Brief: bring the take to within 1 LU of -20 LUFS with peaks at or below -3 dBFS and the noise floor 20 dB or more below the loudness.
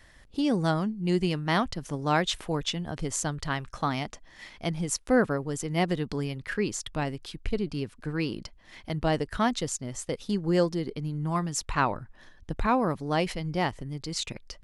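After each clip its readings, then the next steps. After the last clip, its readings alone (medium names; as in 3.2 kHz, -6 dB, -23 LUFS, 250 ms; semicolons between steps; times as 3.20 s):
loudness -29.5 LUFS; peak level -10.5 dBFS; loudness target -20.0 LUFS
-> trim +9.5 dB; peak limiter -3 dBFS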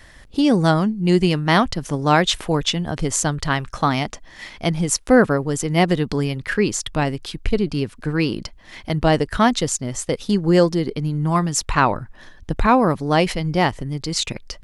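loudness -20.0 LUFS; peak level -3.0 dBFS; noise floor -45 dBFS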